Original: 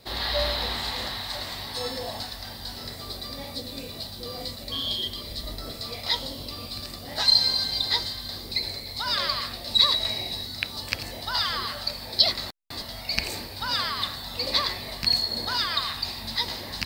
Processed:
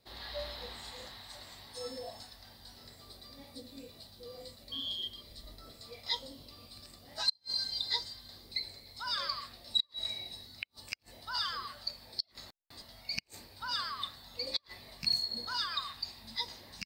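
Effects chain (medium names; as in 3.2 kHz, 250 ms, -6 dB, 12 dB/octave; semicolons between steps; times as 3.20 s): inverted gate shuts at -9 dBFS, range -37 dB; spectral noise reduction 9 dB; trim -7.5 dB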